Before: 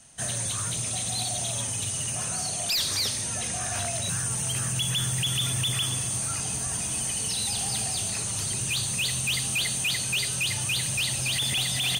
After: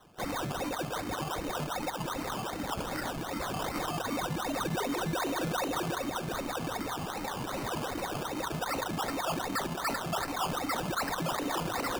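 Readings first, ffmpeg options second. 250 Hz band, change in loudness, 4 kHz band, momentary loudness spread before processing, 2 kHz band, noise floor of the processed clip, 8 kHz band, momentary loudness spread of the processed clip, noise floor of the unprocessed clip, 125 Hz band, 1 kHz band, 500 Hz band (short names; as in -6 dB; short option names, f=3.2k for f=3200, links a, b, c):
+4.5 dB, -8.0 dB, -12.5 dB, 3 LU, -4.5 dB, -38 dBFS, -18.0 dB, 4 LU, -31 dBFS, -7.5 dB, +7.5 dB, +7.0 dB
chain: -af "lowpass=f=3.2k:t=q:w=0.5098,lowpass=f=3.2k:t=q:w=0.6013,lowpass=f=3.2k:t=q:w=0.9,lowpass=f=3.2k:t=q:w=2.563,afreqshift=-3800,alimiter=level_in=2dB:limit=-24dB:level=0:latency=1:release=42,volume=-2dB,acrusher=samples=18:mix=1:aa=0.000001:lfo=1:lforange=10.8:lforate=2.6,volume=1.5dB"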